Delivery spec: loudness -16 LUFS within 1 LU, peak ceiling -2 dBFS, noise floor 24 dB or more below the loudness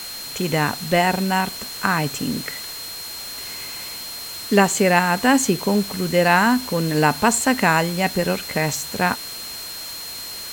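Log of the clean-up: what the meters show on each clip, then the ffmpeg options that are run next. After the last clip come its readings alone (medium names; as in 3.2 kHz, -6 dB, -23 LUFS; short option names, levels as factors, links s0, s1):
steady tone 4.2 kHz; tone level -33 dBFS; noise floor -33 dBFS; noise floor target -45 dBFS; loudness -21.0 LUFS; peak level -2.0 dBFS; loudness target -16.0 LUFS
-> -af "bandreject=f=4200:w=30"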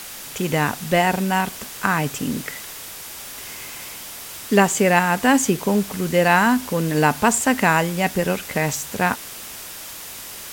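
steady tone not found; noise floor -36 dBFS; noise floor target -44 dBFS
-> -af "afftdn=nr=8:nf=-36"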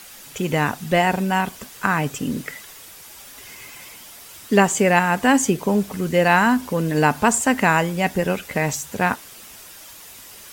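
noise floor -42 dBFS; noise floor target -44 dBFS
-> -af "afftdn=nr=6:nf=-42"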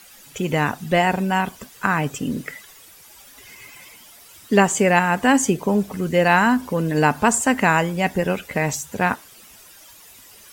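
noise floor -47 dBFS; loudness -20.0 LUFS; peak level -2.0 dBFS; loudness target -16.0 LUFS
-> -af "volume=1.58,alimiter=limit=0.794:level=0:latency=1"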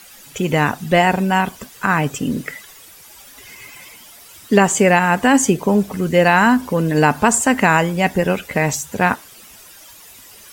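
loudness -16.5 LUFS; peak level -2.0 dBFS; noise floor -43 dBFS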